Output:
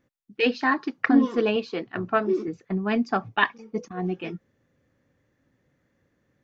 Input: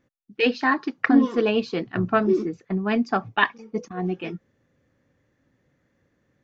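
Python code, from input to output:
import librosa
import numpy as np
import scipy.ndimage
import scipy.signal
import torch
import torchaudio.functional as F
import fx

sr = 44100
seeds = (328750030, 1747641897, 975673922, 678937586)

y = fx.bass_treble(x, sr, bass_db=-9, treble_db=-4, at=(1.56, 2.48))
y = y * 10.0 ** (-1.5 / 20.0)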